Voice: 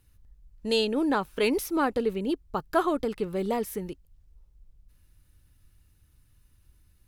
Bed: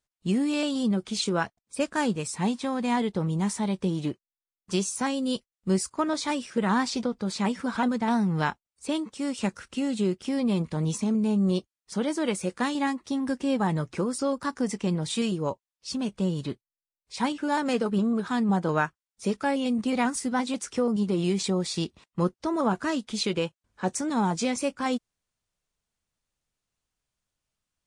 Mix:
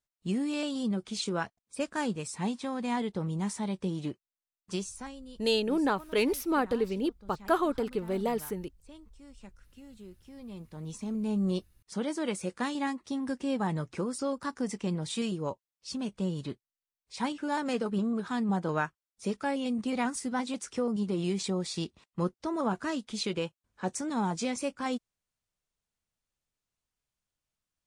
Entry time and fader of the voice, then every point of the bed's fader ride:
4.75 s, −2.0 dB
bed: 0:04.69 −5.5 dB
0:05.39 −23 dB
0:10.24 −23 dB
0:11.35 −5 dB

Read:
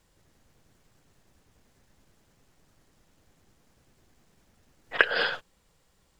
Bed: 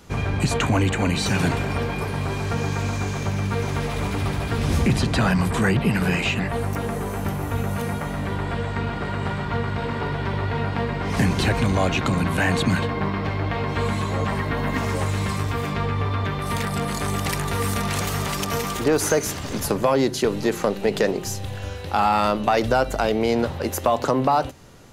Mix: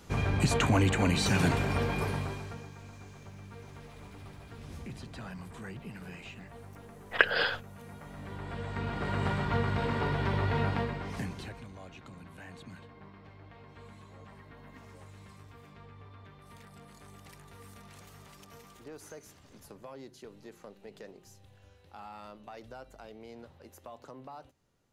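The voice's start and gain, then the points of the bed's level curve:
2.20 s, −2.0 dB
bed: 0:02.10 −5 dB
0:02.72 −23.5 dB
0:07.73 −23.5 dB
0:09.18 −4.5 dB
0:10.69 −4.5 dB
0:11.70 −27.5 dB

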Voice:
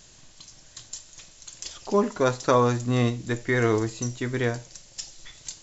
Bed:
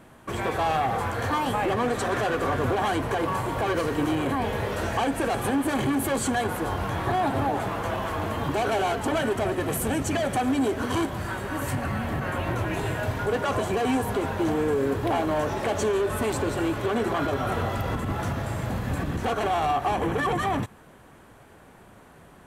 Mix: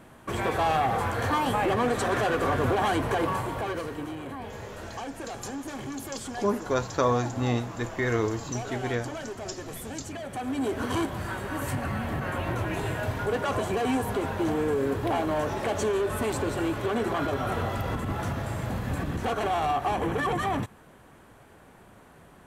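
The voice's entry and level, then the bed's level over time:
4.50 s, −4.0 dB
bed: 0:03.23 0 dB
0:04.14 −11.5 dB
0:10.24 −11.5 dB
0:10.77 −2 dB

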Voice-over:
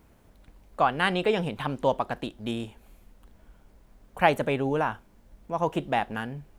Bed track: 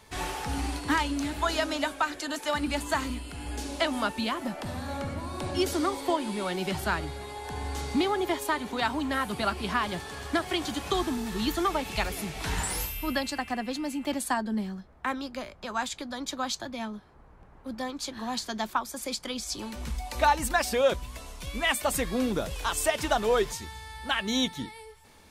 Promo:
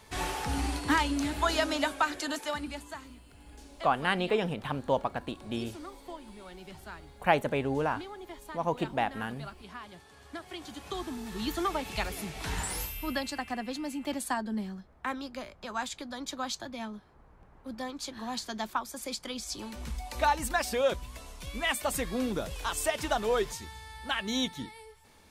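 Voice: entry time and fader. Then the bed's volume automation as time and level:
3.05 s, −3.5 dB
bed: 0:02.29 0 dB
0:03.03 −16.5 dB
0:10.12 −16.5 dB
0:11.61 −3.5 dB

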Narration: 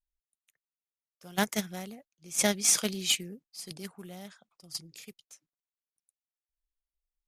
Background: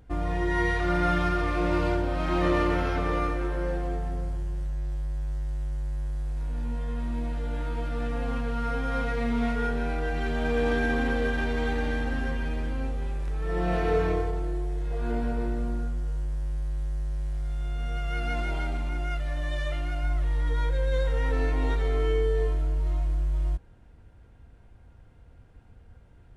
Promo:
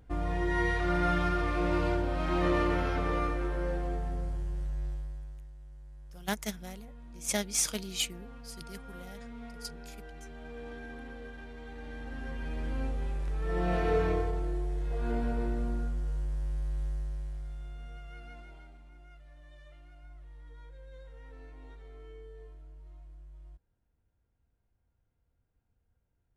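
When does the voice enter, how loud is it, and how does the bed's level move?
4.90 s, −5.0 dB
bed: 0:04.86 −3.5 dB
0:05.54 −18.5 dB
0:11.65 −18.5 dB
0:12.77 −3 dB
0:16.87 −3 dB
0:18.78 −24 dB

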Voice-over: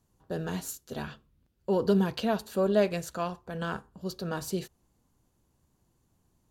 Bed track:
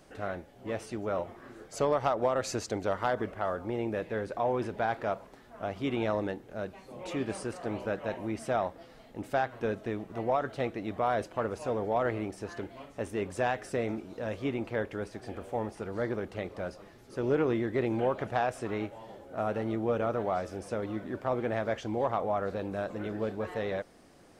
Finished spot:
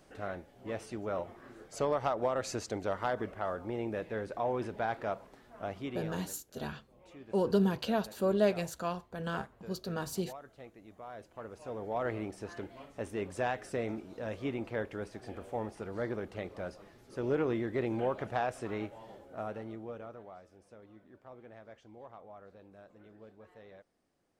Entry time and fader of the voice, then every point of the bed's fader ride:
5.65 s, −3.0 dB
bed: 0:05.73 −3.5 dB
0:06.23 −18.5 dB
0:11.05 −18.5 dB
0:12.13 −3.5 dB
0:19.15 −3.5 dB
0:20.42 −21 dB

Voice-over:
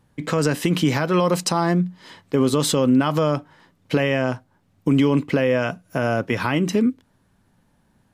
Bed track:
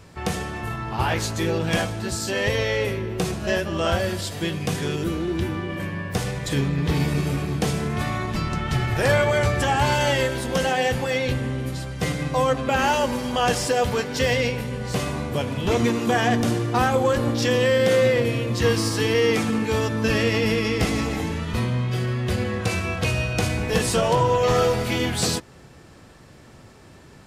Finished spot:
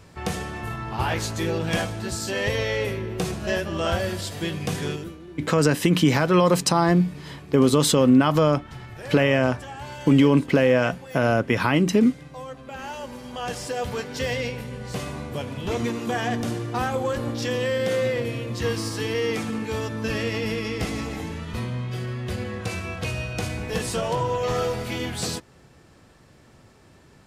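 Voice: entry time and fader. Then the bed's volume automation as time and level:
5.20 s, +1.0 dB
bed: 0:04.91 −2 dB
0:05.17 −16.5 dB
0:12.62 −16.5 dB
0:13.98 −5.5 dB

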